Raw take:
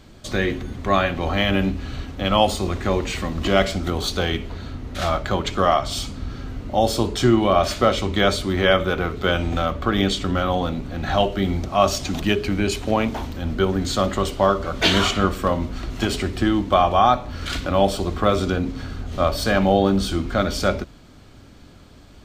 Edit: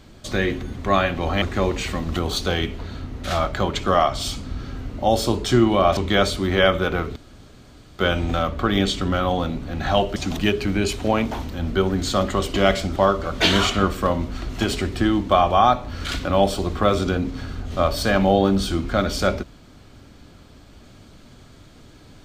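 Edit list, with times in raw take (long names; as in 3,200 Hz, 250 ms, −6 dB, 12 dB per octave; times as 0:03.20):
0:01.42–0:02.71: remove
0:03.45–0:03.87: move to 0:14.37
0:07.68–0:08.03: remove
0:09.22: splice in room tone 0.83 s
0:11.39–0:11.99: remove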